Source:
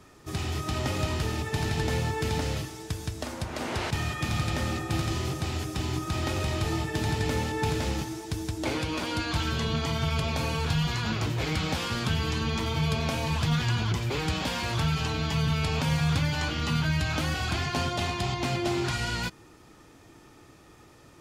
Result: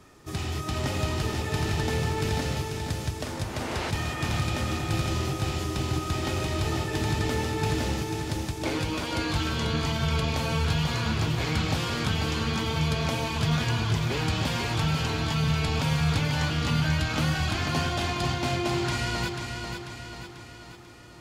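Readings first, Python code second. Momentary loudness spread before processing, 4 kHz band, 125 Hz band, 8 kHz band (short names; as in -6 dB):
5 LU, +1.5 dB, +1.5 dB, +1.5 dB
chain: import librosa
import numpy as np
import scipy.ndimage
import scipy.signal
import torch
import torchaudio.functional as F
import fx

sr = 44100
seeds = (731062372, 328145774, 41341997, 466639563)

y = fx.echo_feedback(x, sr, ms=491, feedback_pct=53, wet_db=-6)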